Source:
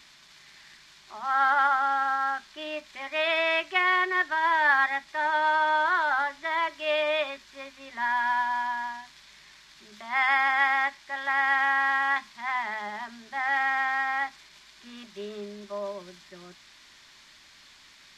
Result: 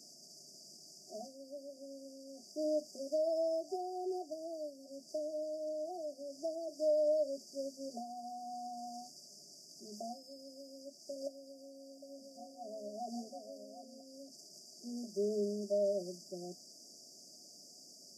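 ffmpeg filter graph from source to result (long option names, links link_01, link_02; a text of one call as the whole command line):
ffmpeg -i in.wav -filter_complex "[0:a]asettb=1/sr,asplit=3[link_01][link_02][link_03];[link_01]atrim=end=11.224[link_04];[link_02]atrim=start=11.22:end=14.01,asetpts=PTS-STARTPTS,afade=type=in:duration=0.004:curve=qsin,afade=type=out:start_time=2.786:duration=0.004:curve=qsin,equalizer=frequency=980:width_type=o:width=1.8:gain=7,aecho=1:1:755:0.501,atrim=end_sample=123039[link_05];[link_03]atrim=start=14.006[link_06];[link_04][link_05]acrossfade=duration=0.004:curve1=hsin:curve2=qsin[link_07];[link_07][link_06]acrossfade=duration=0.004:curve1=qsin:curve2=hsin,acompressor=threshold=-31dB:ratio=4,highpass=frequency=180:width=0.5412,highpass=frequency=180:width=1.3066,afftfilt=real='re*(1-between(b*sr/4096,740,4600))':imag='im*(1-between(b*sr/4096,740,4600))':win_size=4096:overlap=0.75,volume=4dB" out.wav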